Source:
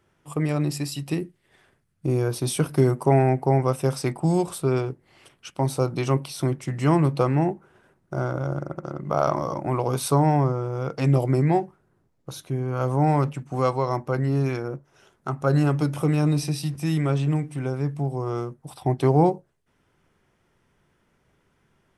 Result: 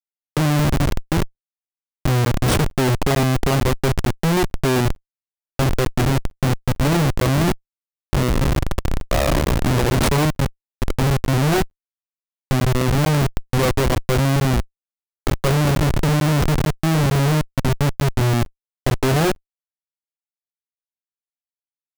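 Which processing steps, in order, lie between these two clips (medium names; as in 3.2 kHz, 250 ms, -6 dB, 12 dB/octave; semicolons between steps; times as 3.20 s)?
10.24–11.26 s: compression 16:1, threshold -23 dBFS, peak gain reduction 9.5 dB; Schmitt trigger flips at -24.5 dBFS; crackling interface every 0.45 s, samples 512, zero, from 0.90 s; trim +8.5 dB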